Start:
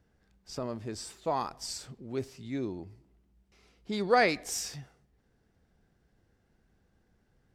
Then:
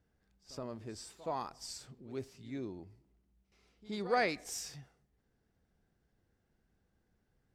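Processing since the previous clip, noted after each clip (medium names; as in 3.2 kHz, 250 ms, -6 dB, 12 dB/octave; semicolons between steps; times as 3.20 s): pre-echo 72 ms -17.5 dB; trim -7 dB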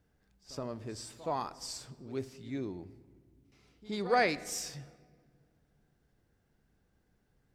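simulated room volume 2700 m³, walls mixed, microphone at 0.35 m; trim +3.5 dB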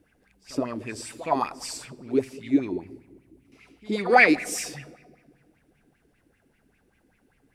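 fifteen-band graphic EQ 250 Hz +5 dB, 2.5 kHz +7 dB, 10 kHz +10 dB; in parallel at -10.5 dB: saturation -24 dBFS, distortion -11 dB; on the sum: sweeping bell 5.1 Hz 290–2500 Hz +16 dB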